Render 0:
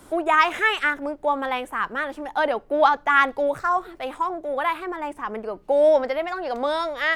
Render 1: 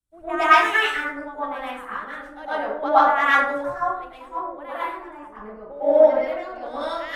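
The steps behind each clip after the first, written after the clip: plate-style reverb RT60 0.87 s, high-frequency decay 0.5×, pre-delay 95 ms, DRR -9.5 dB; three bands expanded up and down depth 100%; trim -11.5 dB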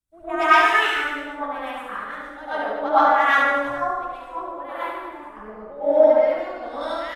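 reverse bouncing-ball echo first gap 70 ms, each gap 1.1×, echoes 5; trim -1.5 dB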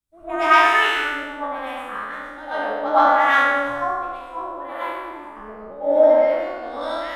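spectral sustain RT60 0.84 s; trim -1 dB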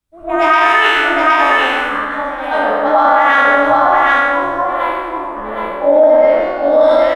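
treble shelf 4.7 kHz -7.5 dB; on a send: delay 765 ms -4.5 dB; on the sum: loudness maximiser +11 dB; trim -1 dB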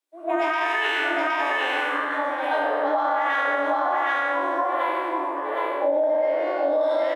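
compression, threshold -16 dBFS, peak gain reduction 10 dB; steep high-pass 280 Hz 96 dB/octave; band-stop 1.3 kHz, Q 8.5; trim -3.5 dB

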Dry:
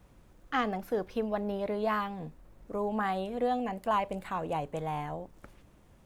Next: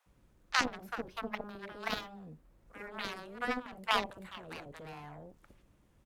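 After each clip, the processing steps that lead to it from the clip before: Chebyshev shaper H 3 -8 dB, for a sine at -17.5 dBFS; bands offset in time highs, lows 60 ms, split 680 Hz; trim +7 dB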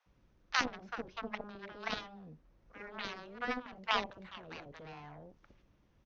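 elliptic low-pass 6.1 kHz, stop band 40 dB; trim -1.5 dB

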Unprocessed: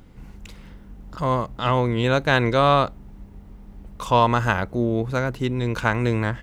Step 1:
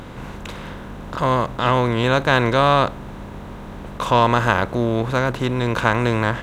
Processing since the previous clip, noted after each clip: spectral levelling over time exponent 0.6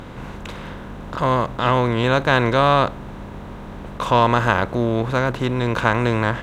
treble shelf 5.9 kHz -4.5 dB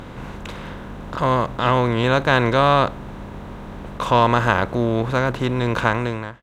fade out at the end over 0.60 s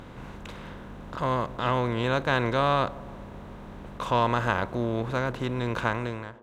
feedback echo behind a band-pass 161 ms, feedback 59%, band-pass 460 Hz, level -18.5 dB; trim -8 dB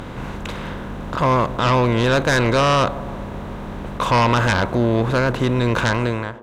sine folder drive 9 dB, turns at -9.5 dBFS; trim -1 dB

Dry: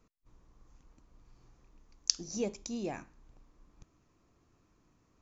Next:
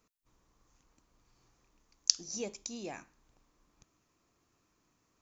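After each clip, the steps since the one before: tilt EQ +2 dB/octave; trim -2.5 dB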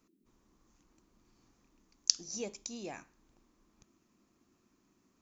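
band noise 180–360 Hz -73 dBFS; trim -1 dB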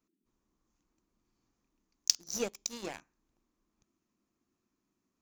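waveshaping leveller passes 3; trim -4.5 dB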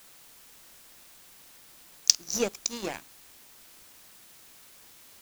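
word length cut 10-bit, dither triangular; trim +6.5 dB

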